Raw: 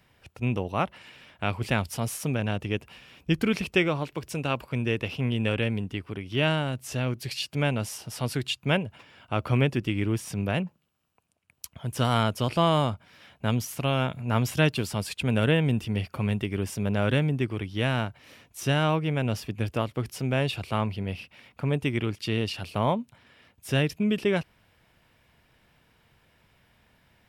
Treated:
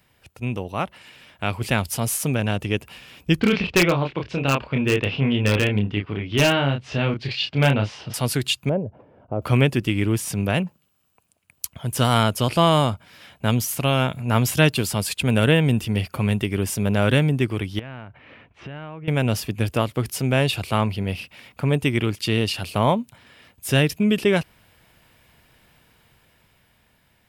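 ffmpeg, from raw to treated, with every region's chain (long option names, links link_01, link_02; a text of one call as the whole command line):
ffmpeg -i in.wav -filter_complex "[0:a]asettb=1/sr,asplit=3[link_01][link_02][link_03];[link_01]atrim=end=3.404[link_04];[link_02]atrim=start=3.4:end=8.14,asetpts=PTS-STARTPTS,afade=type=in:duration=0.004:curve=qsin,afade=type=out:start_time=4.736:duration=0.004:curve=qsin,lowpass=frequency=3900:width=0.5412,lowpass=frequency=3900:width=1.3066,asplit=2[link_05][link_06];[link_06]adelay=29,volume=-4dB[link_07];[link_05][link_07]amix=inputs=2:normalize=0,atrim=end_sample=209034,aeval=exprs='0.168*(abs(mod(val(0)/0.168+3,4)-2)-1)':channel_layout=same[link_08];[link_03]atrim=start=8.136[link_09];[link_04][link_08]acrossfade=duration=0.004:curve1=hsin:curve2=qsin[link_10];[link_10][link_09]acrossfade=duration=0.004:curve1=qsin:curve2=hsin,asettb=1/sr,asplit=3[link_11][link_12][link_13];[link_11]atrim=end=8.694[link_14];[link_12]atrim=start=8.69:end=9.42,asetpts=PTS-STARTPTS,afade=type=in:duration=0.004:curve=qsin,afade=type=out:start_time=0.726:duration=0.004:curve=qsin,acompressor=threshold=-33dB:ratio=1.5:attack=3.2:release=140:knee=1:detection=peak,lowpass=frequency=560:width_type=q:width=1.7[link_15];[link_13]atrim=start=9.416[link_16];[link_14][link_15]acrossfade=duration=0.004:curve1=hsin:curve2=qsin[link_17];[link_17][link_16]acrossfade=duration=0.004:curve1=qsin:curve2=hsin,asettb=1/sr,asplit=3[link_18][link_19][link_20];[link_18]atrim=end=17.794[link_21];[link_19]atrim=start=17.79:end=19.08,asetpts=PTS-STARTPTS,afade=type=in:duration=0.004:curve=qsin,afade=type=out:start_time=1.286:duration=0.004:curve=qsin,lowpass=frequency=2600:width=0.5412,lowpass=frequency=2600:width=1.3066,acompressor=threshold=-39dB:ratio=8:attack=3.2:release=140:knee=1:detection=peak[link_22];[link_20]atrim=start=19.076[link_23];[link_21][link_22]acrossfade=duration=0.004:curve1=hsin:curve2=qsin[link_24];[link_24][link_23]acrossfade=duration=0.004:curve1=qsin:curve2=hsin,highshelf=frequency=6300:gain=8.5,bandreject=frequency=5600:width=23,dynaudnorm=framelen=330:gausssize=9:maxgain=6dB" out.wav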